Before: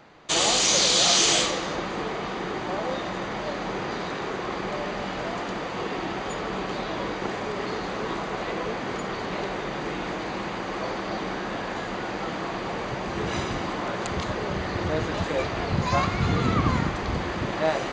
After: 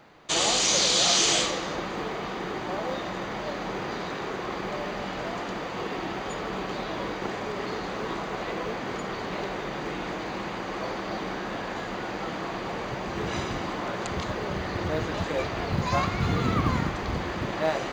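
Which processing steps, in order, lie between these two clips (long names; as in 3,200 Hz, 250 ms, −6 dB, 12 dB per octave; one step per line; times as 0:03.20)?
log-companded quantiser 8 bits
level −2 dB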